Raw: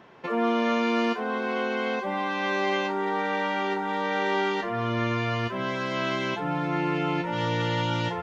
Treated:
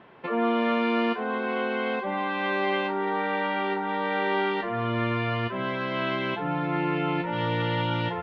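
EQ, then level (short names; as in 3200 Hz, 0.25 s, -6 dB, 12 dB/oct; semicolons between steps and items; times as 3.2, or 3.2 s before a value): LPF 3700 Hz 24 dB/oct; 0.0 dB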